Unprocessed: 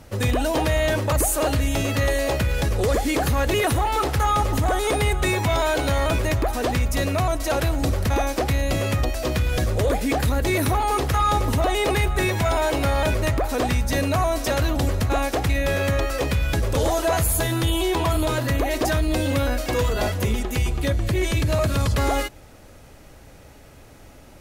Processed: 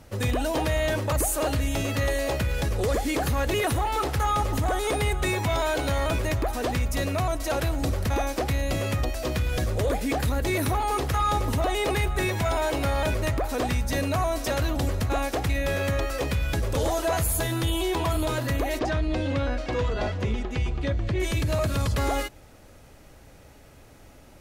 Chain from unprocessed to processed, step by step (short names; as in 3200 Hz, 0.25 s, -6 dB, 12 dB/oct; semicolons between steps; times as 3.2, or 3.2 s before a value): 18.79–21.2 air absorption 130 m; gain -4 dB